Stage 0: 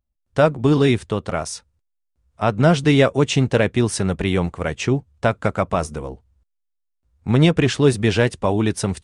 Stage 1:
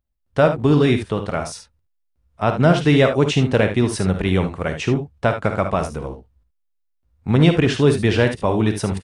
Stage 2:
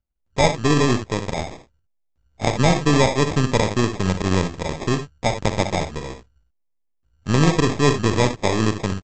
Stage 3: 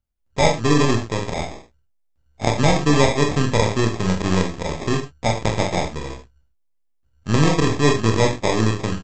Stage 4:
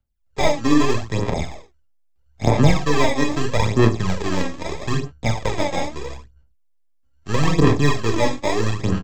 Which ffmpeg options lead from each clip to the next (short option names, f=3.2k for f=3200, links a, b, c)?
-af "equalizer=f=7.3k:w=1.2:g=-6,aecho=1:1:42|54|74:0.158|0.299|0.299"
-af "aeval=exprs='if(lt(val(0),0),0.447*val(0),val(0))':c=same,aresample=16000,acrusher=samples=11:mix=1:aa=0.000001,aresample=44100"
-af "aecho=1:1:27|44:0.473|0.422,volume=-1dB"
-filter_complex "[0:a]aphaser=in_gain=1:out_gain=1:delay=3.7:decay=0.63:speed=0.78:type=sinusoidal,acrossover=split=280|1100|4000[a][b][c][d];[d]asoftclip=type=tanh:threshold=-27dB[e];[a][b][c][e]amix=inputs=4:normalize=0,volume=-3.5dB"